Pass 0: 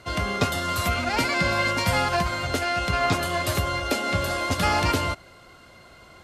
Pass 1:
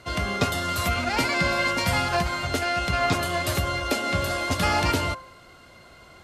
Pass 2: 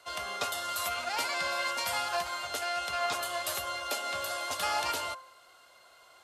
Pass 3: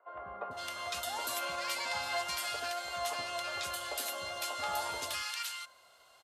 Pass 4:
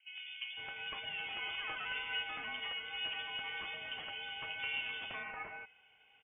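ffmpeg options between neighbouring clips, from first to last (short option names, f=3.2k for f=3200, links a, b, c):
-af "bandreject=f=104.7:t=h:w=4,bandreject=f=209.4:t=h:w=4,bandreject=f=314.1:t=h:w=4,bandreject=f=418.8:t=h:w=4,bandreject=f=523.5:t=h:w=4,bandreject=f=628.2:t=h:w=4,bandreject=f=732.9:t=h:w=4,bandreject=f=837.6:t=h:w=4,bandreject=f=942.3:t=h:w=4,bandreject=f=1.047k:t=h:w=4,bandreject=f=1.1517k:t=h:w=4,bandreject=f=1.2564k:t=h:w=4,bandreject=f=1.3611k:t=h:w=4,bandreject=f=1.4658k:t=h:w=4,bandreject=f=1.5705k:t=h:w=4,bandreject=f=1.6752k:t=h:w=4"
-filter_complex "[0:a]acrossover=split=530 2000:gain=0.0708 1 0.251[a][b][c];[a][b][c]amix=inputs=3:normalize=0,aexciter=amount=4.2:drive=3.6:freq=2.9k,volume=-5dB"
-filter_complex "[0:a]acrossover=split=350|1400[a][b][c];[a]adelay=80[d];[c]adelay=510[e];[d][b][e]amix=inputs=3:normalize=0,volume=-2.5dB"
-af "lowpass=f=3.1k:t=q:w=0.5098,lowpass=f=3.1k:t=q:w=0.6013,lowpass=f=3.1k:t=q:w=0.9,lowpass=f=3.1k:t=q:w=2.563,afreqshift=-3600,volume=-3dB"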